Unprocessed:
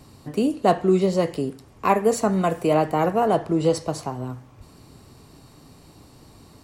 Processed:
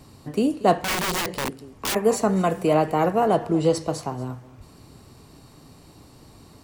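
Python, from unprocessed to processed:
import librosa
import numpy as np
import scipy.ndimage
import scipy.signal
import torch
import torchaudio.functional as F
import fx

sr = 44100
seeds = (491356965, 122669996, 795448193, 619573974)

y = x + 10.0 ** (-18.5 / 20.0) * np.pad(x, (int(233 * sr / 1000.0), 0))[:len(x)]
y = fx.overflow_wrap(y, sr, gain_db=20.0, at=(0.82, 1.95))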